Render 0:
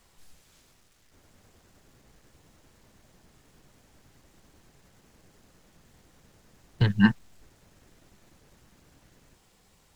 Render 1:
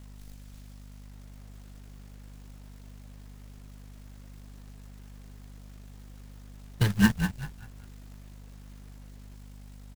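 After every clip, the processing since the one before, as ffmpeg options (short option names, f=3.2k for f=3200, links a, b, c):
-filter_complex "[0:a]asplit=5[a][b][c][d][e];[b]adelay=194,afreqshift=-34,volume=-8dB[f];[c]adelay=388,afreqshift=-68,volume=-17.6dB[g];[d]adelay=582,afreqshift=-102,volume=-27.3dB[h];[e]adelay=776,afreqshift=-136,volume=-36.9dB[i];[a][f][g][h][i]amix=inputs=5:normalize=0,aeval=exprs='val(0)+0.00631*(sin(2*PI*50*n/s)+sin(2*PI*2*50*n/s)/2+sin(2*PI*3*50*n/s)/3+sin(2*PI*4*50*n/s)/4+sin(2*PI*5*50*n/s)/5)':c=same,acrusher=bits=3:mode=log:mix=0:aa=0.000001,volume=-2dB"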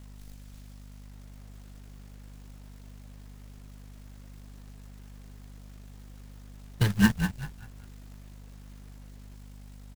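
-af anull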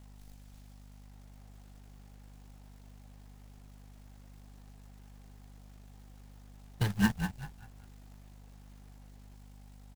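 -af "equalizer=f=790:w=3.8:g=7.5,volume=-6dB"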